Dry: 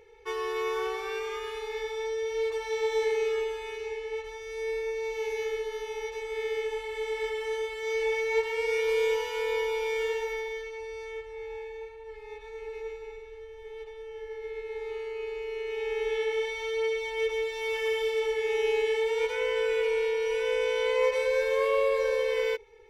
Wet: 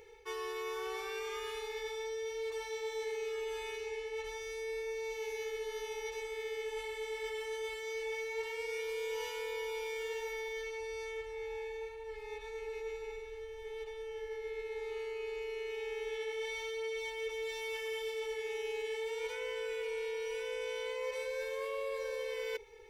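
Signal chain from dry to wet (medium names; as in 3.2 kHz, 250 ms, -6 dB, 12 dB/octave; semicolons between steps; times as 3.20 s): treble shelf 4.4 kHz +9 dB; reverse; compression 4:1, threshold -37 dBFS, peak gain reduction 13.5 dB; reverse; trim -1 dB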